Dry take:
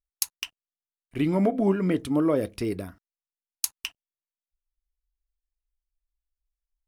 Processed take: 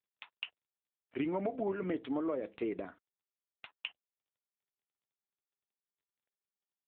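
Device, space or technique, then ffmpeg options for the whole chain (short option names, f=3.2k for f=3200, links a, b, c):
voicemail: -filter_complex "[0:a]asettb=1/sr,asplit=3[a][b][c];[a]atrim=end=1.834[d];[b]atrim=start=1.83:end=2.83,asetpts=PTS-STARTPTS,afade=t=in:d=0.004:c=qsin,afade=t=out:st=0.996:d=0.004:c=qsin,adynamicequalizer=threshold=0.02:dfrequency=510:dqfactor=2:tfrequency=510:tqfactor=2:attack=5:release=100:ratio=0.375:range=2:mode=cutabove:tftype=bell[e];[c]atrim=start=2.826[f];[d][e]acrossfade=d=0.004:c1=hsin:c2=qsin[g];[g][f]acrossfade=d=0.004:c1=qsin:c2=hsin,highpass=370,lowpass=3k,acompressor=threshold=-30dB:ratio=10" -ar 8000 -c:a libopencore_amrnb -b:a 7950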